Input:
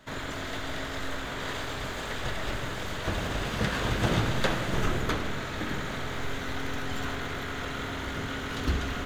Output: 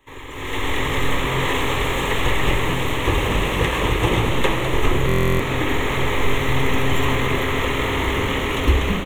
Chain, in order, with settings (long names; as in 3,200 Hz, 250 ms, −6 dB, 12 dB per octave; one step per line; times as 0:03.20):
automatic gain control gain up to 16 dB
phaser with its sweep stopped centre 980 Hz, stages 8
on a send: echo with shifted repeats 206 ms, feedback 56%, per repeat +130 Hz, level −10 dB
on the sum: buffer that repeats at 0:05.07, samples 1,024, times 13